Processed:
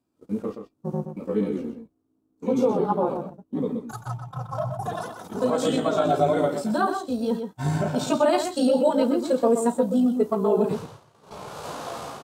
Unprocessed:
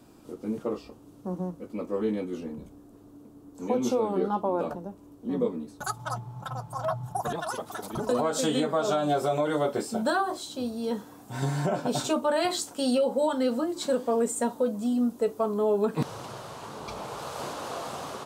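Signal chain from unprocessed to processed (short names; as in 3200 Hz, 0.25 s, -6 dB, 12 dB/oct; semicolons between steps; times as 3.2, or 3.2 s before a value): gate -37 dBFS, range -25 dB; harmonic-percussive split percussive -14 dB; outdoor echo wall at 32 m, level -7 dB; granular stretch 0.67×, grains 35 ms; gain +6 dB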